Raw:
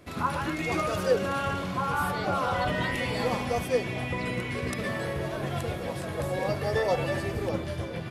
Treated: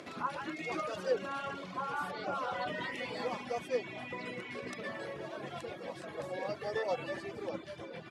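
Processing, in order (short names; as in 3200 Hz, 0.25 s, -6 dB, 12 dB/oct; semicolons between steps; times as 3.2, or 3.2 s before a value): upward compressor, threshold -31 dBFS; HPF 230 Hz 12 dB/oct; reverb removal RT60 0.66 s; LPF 6700 Hz 12 dB/oct; gain -7 dB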